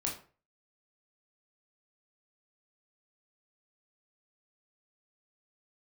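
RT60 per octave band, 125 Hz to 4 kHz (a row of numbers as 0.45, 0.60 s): 0.45, 0.40, 0.40, 0.40, 0.35, 0.25 s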